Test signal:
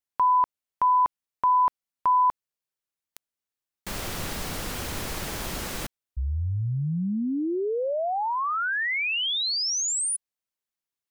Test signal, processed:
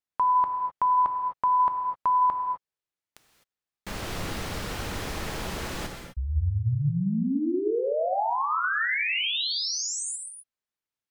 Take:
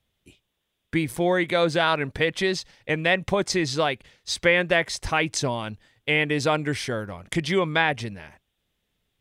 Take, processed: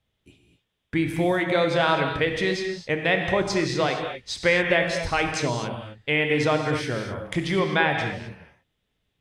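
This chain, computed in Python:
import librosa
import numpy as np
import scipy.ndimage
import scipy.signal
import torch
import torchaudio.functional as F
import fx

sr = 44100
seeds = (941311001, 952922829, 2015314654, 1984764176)

y = fx.high_shelf(x, sr, hz=7000.0, db=-10.5)
y = fx.rev_gated(y, sr, seeds[0], gate_ms=280, shape='flat', drr_db=3.0)
y = y * librosa.db_to_amplitude(-1.0)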